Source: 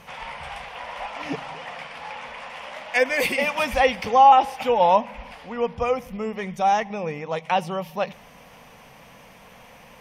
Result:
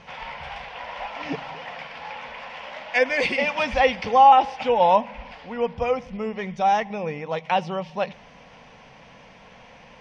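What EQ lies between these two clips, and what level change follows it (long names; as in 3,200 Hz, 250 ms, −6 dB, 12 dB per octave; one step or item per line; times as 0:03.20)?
low-pass filter 5,600 Hz 24 dB per octave
notch filter 1,200 Hz, Q 14
0.0 dB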